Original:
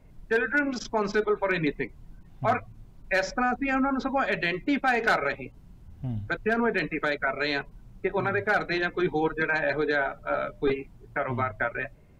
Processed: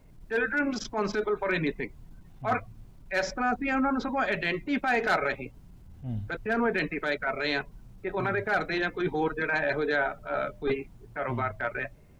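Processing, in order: word length cut 12-bit, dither none; transient shaper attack -8 dB, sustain 0 dB

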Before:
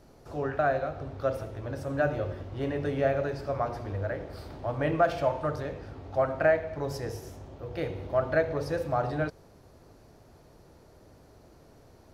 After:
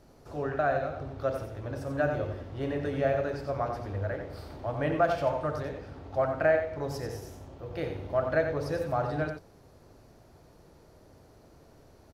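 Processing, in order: delay 90 ms -7.5 dB; trim -1.5 dB

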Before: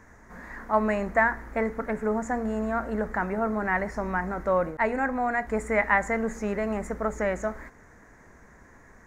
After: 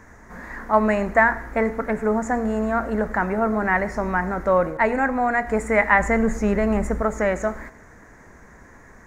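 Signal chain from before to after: 5.99–7.02 s: bass shelf 170 Hz +9.5 dB; reverberation RT60 0.60 s, pre-delay 67 ms, DRR 18 dB; trim +5.5 dB

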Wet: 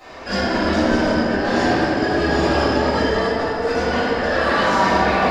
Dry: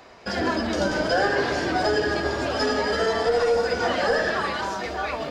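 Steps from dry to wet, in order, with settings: compressor with a negative ratio -27 dBFS, ratio -0.5; peak limiter -18.5 dBFS, peak gain reduction 8 dB; reverberation RT60 3.3 s, pre-delay 3 ms, DRR -16.5 dB; trim -6.5 dB

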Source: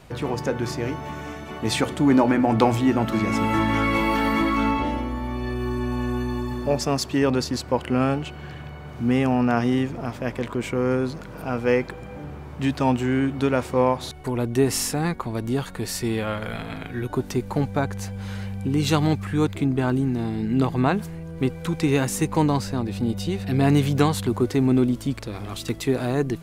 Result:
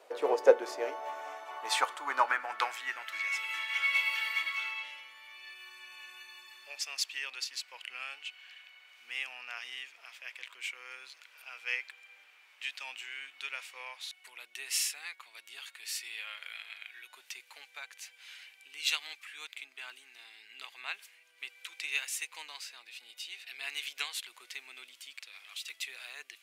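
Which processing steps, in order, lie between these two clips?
Chebyshev high-pass 440 Hz, order 2; high-pass sweep 490 Hz -> 2.5 kHz, 0.53–3.50 s; upward expansion 1.5:1, over -32 dBFS

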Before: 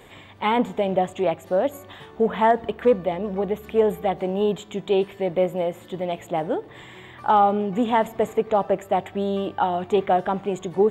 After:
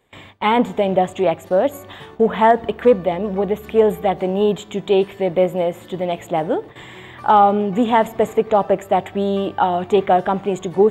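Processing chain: gate with hold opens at -34 dBFS; trim +5 dB

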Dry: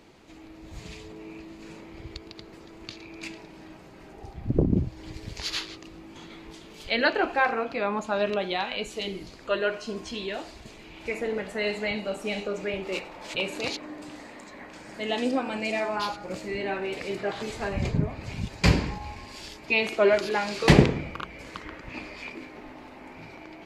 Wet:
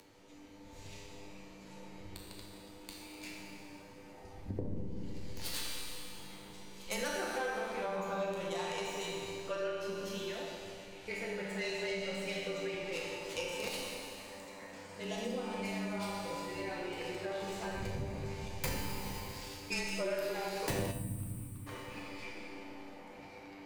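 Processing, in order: tracing distortion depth 0.2 ms; small resonant body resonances 530/930 Hz, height 10 dB, ringing for 70 ms; frequency shift -24 Hz; Schroeder reverb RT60 2.3 s, combs from 28 ms, DRR -1 dB; upward compressor, threshold -46 dBFS; 11.11–13.18 s: peaking EQ 3.1 kHz +4.5 dB 2.2 oct; 20.91–21.67 s: time-frequency box 310–7600 Hz -19 dB; feedback comb 98 Hz, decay 0.37 s, harmonics all, mix 80%; compression 3:1, threshold -32 dBFS, peak gain reduction 11.5 dB; treble shelf 6.1 kHz +9 dB; feedback echo behind a band-pass 72 ms, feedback 57%, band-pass 910 Hz, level -9.5 dB; trim -3.5 dB

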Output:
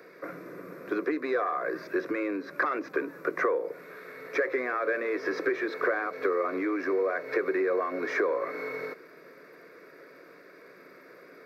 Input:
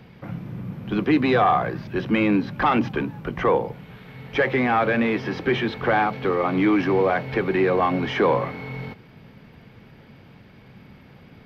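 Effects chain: steep high-pass 220 Hz 36 dB/octave; compression 12:1, threshold -27 dBFS, peak gain reduction 13 dB; static phaser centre 830 Hz, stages 6; trim +5 dB

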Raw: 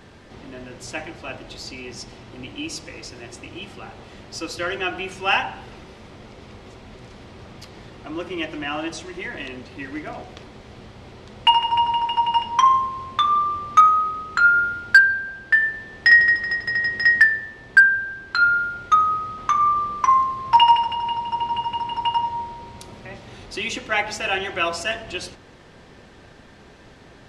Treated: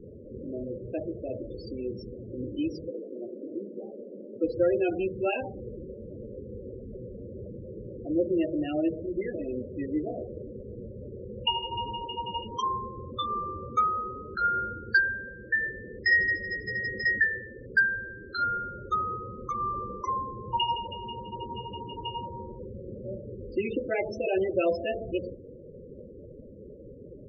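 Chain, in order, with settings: 2.90–4.44 s: Chebyshev band-pass 230–1400 Hz, order 2; resonant low shelf 690 Hz +9.5 dB, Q 3; loudest bins only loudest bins 16; trim -8.5 dB

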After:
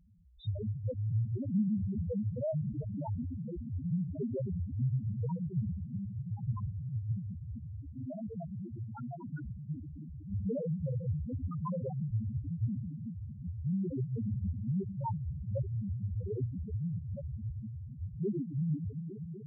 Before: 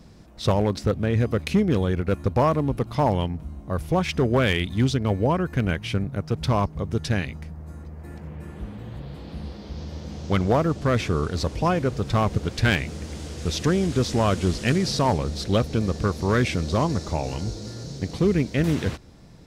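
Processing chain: echo whose repeats swap between lows and highs 123 ms, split 850 Hz, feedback 90%, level -7 dB; ever faster or slower copies 241 ms, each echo +5 st, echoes 3, each echo -6 dB; loudest bins only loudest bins 1; trim -4.5 dB

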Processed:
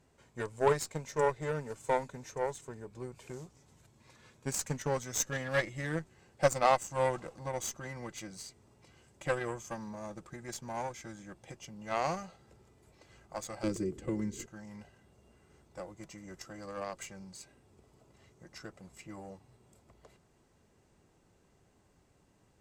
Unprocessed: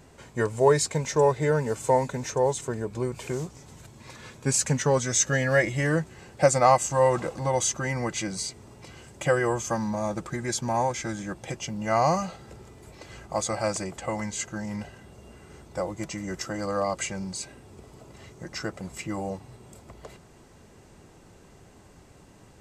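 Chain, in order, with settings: Chebyshev shaper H 3 -32 dB, 4 -23 dB, 7 -22 dB, 8 -36 dB, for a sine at -5.5 dBFS; 13.63–14.46 s: resonant low shelf 510 Hz +11 dB, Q 3; trim -6.5 dB

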